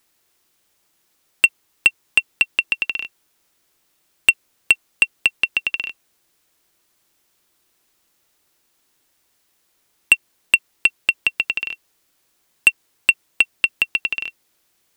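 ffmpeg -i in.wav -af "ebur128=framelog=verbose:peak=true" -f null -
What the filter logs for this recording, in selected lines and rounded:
Integrated loudness:
  I:         -19.0 LUFS
  Threshold: -31.8 LUFS
Loudness range:
  LRA:         6.3 LU
  Threshold: -41.9 LUFS
  LRA low:   -26.2 LUFS
  LRA high:  -19.8 LUFS
True peak:
  Peak:       -2.4 dBFS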